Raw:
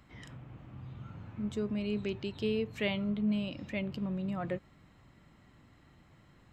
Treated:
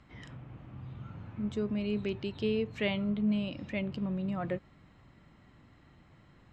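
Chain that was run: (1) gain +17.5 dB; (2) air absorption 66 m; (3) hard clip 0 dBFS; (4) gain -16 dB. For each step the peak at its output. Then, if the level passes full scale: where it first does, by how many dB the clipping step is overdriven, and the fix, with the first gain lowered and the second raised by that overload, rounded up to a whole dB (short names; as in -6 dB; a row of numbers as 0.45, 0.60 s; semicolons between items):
-1.5, -2.0, -2.0, -18.0 dBFS; no overload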